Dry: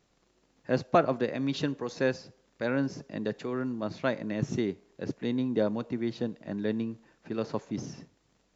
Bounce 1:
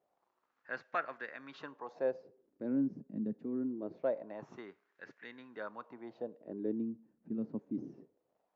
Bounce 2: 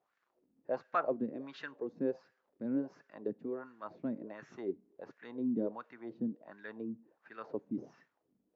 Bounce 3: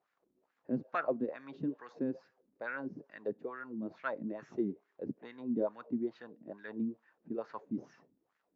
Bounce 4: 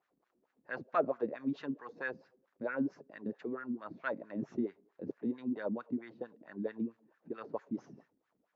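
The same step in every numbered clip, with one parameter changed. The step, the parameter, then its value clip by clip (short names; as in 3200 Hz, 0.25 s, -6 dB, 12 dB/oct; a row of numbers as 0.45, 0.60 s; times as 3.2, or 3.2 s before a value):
wah, rate: 0.24, 1.4, 2.3, 4.5 Hz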